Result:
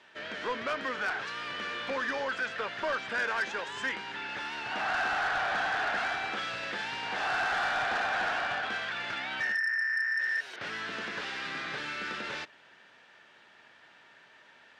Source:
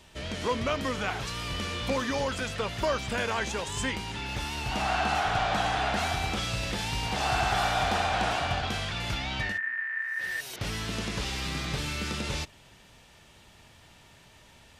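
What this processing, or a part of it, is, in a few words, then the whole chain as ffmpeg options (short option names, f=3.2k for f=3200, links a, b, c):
intercom: -af "highpass=320,lowpass=3.9k,equalizer=f=1.6k:t=o:w=0.56:g=11,asoftclip=type=tanh:threshold=-21.5dB,volume=-3dB"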